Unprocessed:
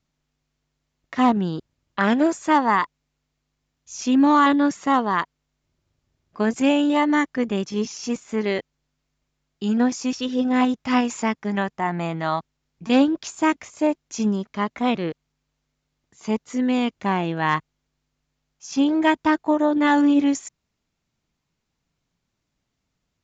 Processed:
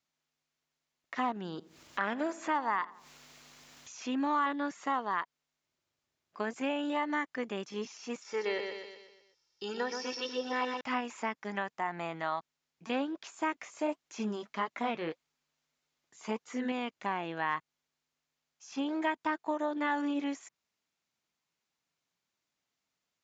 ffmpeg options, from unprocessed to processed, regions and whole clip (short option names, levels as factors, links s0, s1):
-filter_complex "[0:a]asettb=1/sr,asplit=3[s0][s1][s2];[s0]atrim=end=1.364[s3];[s1]atrim=start=1.36:end=4.15,asetpts=PTS-STARTPTS,afade=t=in:d=0.004:c=qsin,afade=t=out:st=2.786:d=0.004:c=qsin,acompressor=mode=upward:threshold=0.0891:ratio=2.5:attack=3.2:release=140:knee=2.83:detection=peak,asplit=2[s4][s5];[s5]adelay=84,lowpass=f=1200:p=1,volume=0.119,asplit=2[s6][s7];[s7]adelay=84,lowpass=f=1200:p=1,volume=0.52,asplit=2[s8][s9];[s9]adelay=84,lowpass=f=1200:p=1,volume=0.52,asplit=2[s10][s11];[s11]adelay=84,lowpass=f=1200:p=1,volume=0.52[s12];[s4][s6][s8][s10][s12]amix=inputs=5:normalize=0,atrim=end_sample=123039[s13];[s2]atrim=start=4.146[s14];[s3][s13]acrossfade=d=0.004:c1=hsin:c2=qsin[s15];[s15][s14]acrossfade=d=0.004:c1=qsin:c2=hsin,asettb=1/sr,asplit=3[s16][s17][s18];[s16]atrim=end=8.224[s19];[s17]atrim=start=8.22:end=10.81,asetpts=PTS-STARTPTS,afade=t=in:d=0.004:c=qsin,afade=t=out:st=2.586:d=0.004:c=qsin,lowpass=f=5400:t=q:w=7.9,aecho=1:1:2.2:0.69,atrim=end_sample=114219,aecho=1:1:123|246|369|492|615|738:0.422|0.202|0.0972|0.0466|0.0224|0.0107,atrim=end_sample=114219[s20];[s18]atrim=start=10.806[s21];[s19][s20]acrossfade=d=0.004:c1=hsin:c2=qsin[s22];[s22][s21]acrossfade=d=0.004:c1=qsin:c2=hsin,asettb=1/sr,asplit=3[s23][s24][s25];[s23]atrim=end=13.524[s26];[s24]atrim=start=13.52:end=16.72,asetpts=PTS-STARTPTS,afade=t=in:d=0.004:c=qsin,afade=t=out:st=3.196:d=0.004:c=qsin,acontrast=78,flanger=delay=2.2:depth=5.7:regen=-52:speed=1.7:shape=sinusoidal[s27];[s25]atrim=start=16.716[s28];[s26][s27]acrossfade=d=0.004:c1=hsin:c2=qsin[s29];[s29][s28]acrossfade=d=0.004:c1=qsin:c2=hsin,acrossover=split=2900[s30][s31];[s31]acompressor=threshold=0.00447:ratio=4:attack=1:release=60[s32];[s30][s32]amix=inputs=2:normalize=0,highpass=f=780:p=1,acompressor=threshold=0.0447:ratio=2,volume=0.631"